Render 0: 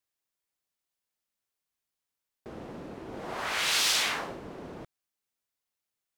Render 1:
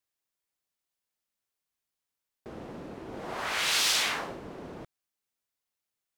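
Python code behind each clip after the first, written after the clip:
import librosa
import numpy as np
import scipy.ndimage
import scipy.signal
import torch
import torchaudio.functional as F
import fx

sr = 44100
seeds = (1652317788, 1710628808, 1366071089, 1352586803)

y = x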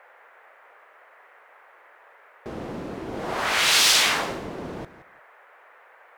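y = fx.dmg_noise_band(x, sr, seeds[0], low_hz=460.0, high_hz=2000.0, level_db=-61.0)
y = fx.echo_feedback(y, sr, ms=172, feedback_pct=18, wet_db=-15.5)
y = y * 10.0 ** (8.0 / 20.0)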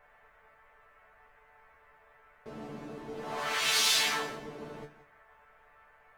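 y = fx.resonator_bank(x, sr, root=50, chord='fifth', decay_s=0.21)
y = fx.dmg_noise_colour(y, sr, seeds[1], colour='brown', level_db=-74.0)
y = y * 10.0 ** (3.0 / 20.0)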